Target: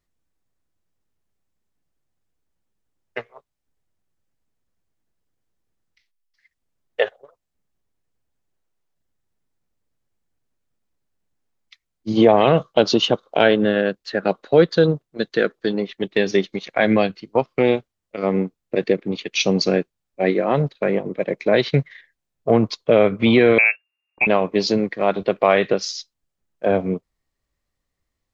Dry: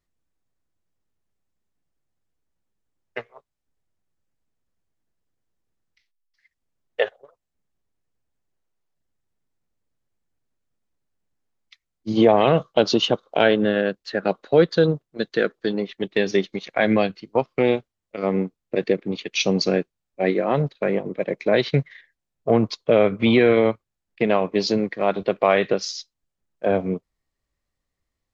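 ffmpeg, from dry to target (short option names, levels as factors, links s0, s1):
-filter_complex "[0:a]asettb=1/sr,asplit=3[s0][s1][s2];[s0]atrim=end=23.584[s3];[s1]atrim=start=23.58:end=24.27,asetpts=PTS-STARTPTS,afade=t=in:d=0.004:c=qsin,afade=t=out:st=0.686:d=0.004:c=qsin,lowpass=f=2400:t=q:w=0.5098,lowpass=f=2400:t=q:w=0.6013,lowpass=f=2400:t=q:w=0.9,lowpass=f=2400:t=q:w=2.563,afreqshift=-2800[s4];[s2]atrim=start=24.266[s5];[s3][s4]acrossfade=d=0.004:c1=hsin:c2=qsin[s6];[s6][s5]acrossfade=d=0.004:c1=qsin:c2=hsin,volume=1.26"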